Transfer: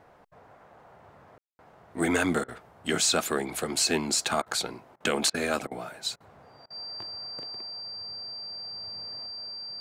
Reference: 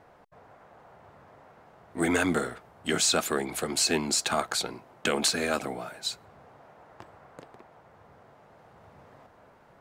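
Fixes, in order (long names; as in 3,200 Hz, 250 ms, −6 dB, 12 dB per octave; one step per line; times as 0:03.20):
notch filter 4,700 Hz, Q 30
ambience match 0:01.38–0:01.59
repair the gap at 0:01.48/0:02.44/0:04.42/0:04.96/0:05.30/0:05.67/0:06.16/0:06.66, 42 ms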